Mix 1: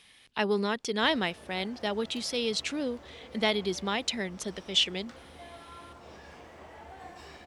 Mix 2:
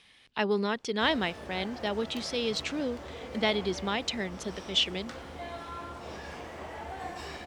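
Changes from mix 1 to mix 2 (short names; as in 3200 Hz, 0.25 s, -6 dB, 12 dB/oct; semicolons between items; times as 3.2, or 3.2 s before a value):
speech: add air absorption 54 m; background +7.5 dB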